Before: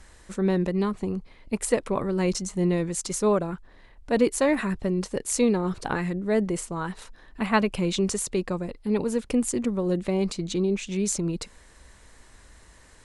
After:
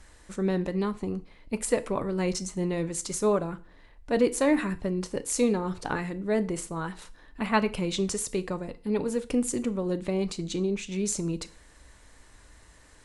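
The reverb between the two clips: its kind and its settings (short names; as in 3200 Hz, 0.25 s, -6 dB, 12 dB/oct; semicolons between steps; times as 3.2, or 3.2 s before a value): FDN reverb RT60 0.41 s, low-frequency decay 1×, high-frequency decay 0.95×, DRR 11 dB; gain -2.5 dB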